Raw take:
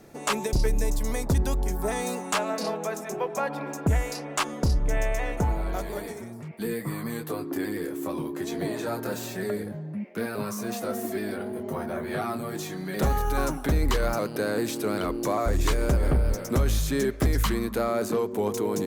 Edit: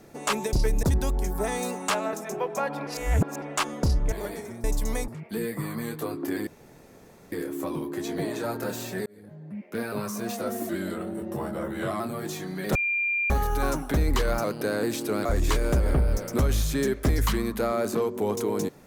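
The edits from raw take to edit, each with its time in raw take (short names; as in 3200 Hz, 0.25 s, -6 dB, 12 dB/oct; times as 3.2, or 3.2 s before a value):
0.83–1.27 move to 6.36
2.57–2.93 cut
3.67–4.22 reverse
4.92–5.84 cut
7.75 insert room tone 0.85 s
9.49–10.28 fade in
11.12–12.3 speed 90%
13.05 add tone 2390 Hz -23 dBFS 0.55 s
15–15.42 cut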